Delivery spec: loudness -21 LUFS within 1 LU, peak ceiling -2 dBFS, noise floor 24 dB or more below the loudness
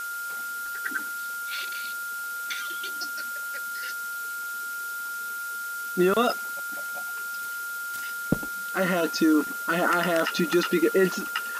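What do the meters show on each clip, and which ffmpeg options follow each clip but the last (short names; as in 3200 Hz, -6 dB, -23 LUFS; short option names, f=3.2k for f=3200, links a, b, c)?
steady tone 1400 Hz; tone level -31 dBFS; noise floor -33 dBFS; noise floor target -52 dBFS; loudness -27.5 LUFS; peak -8.5 dBFS; loudness target -21.0 LUFS
-> -af "bandreject=f=1.4k:w=30"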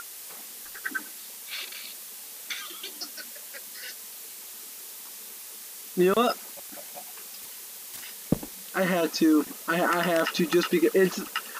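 steady tone none; noise floor -43 dBFS; noise floor target -53 dBFS
-> -af "afftdn=nr=10:nf=-43"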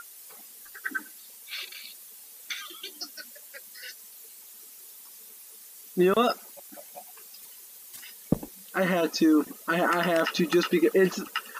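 noise floor -48 dBFS; noise floor target -51 dBFS
-> -af "afftdn=nr=6:nf=-48"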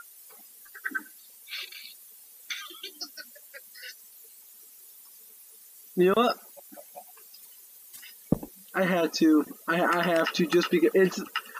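noise floor -52 dBFS; loudness -26.5 LUFS; peak -8.5 dBFS; loudness target -21.0 LUFS
-> -af "volume=5.5dB"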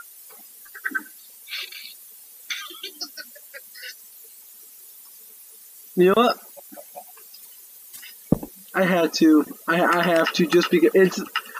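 loudness -21.0 LUFS; peak -3.0 dBFS; noise floor -47 dBFS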